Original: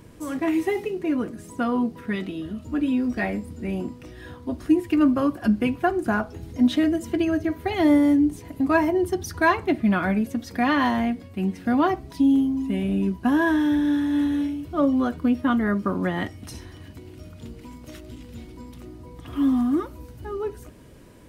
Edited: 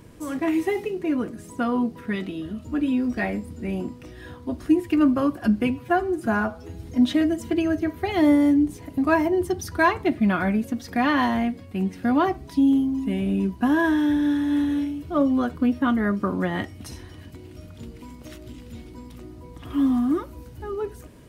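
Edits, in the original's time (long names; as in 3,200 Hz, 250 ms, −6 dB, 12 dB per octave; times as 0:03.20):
0:05.70–0:06.45: time-stretch 1.5×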